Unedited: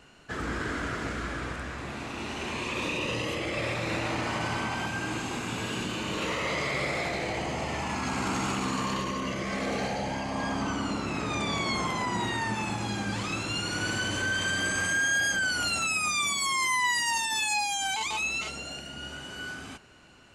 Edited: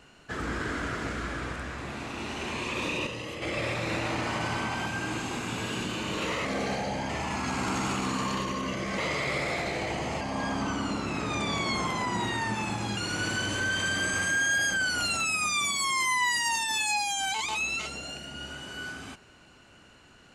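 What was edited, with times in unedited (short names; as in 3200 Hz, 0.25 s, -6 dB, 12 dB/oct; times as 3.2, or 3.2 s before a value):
3.07–3.42 gain -6 dB
6.45–7.68 swap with 9.57–10.21
12.97–13.59 cut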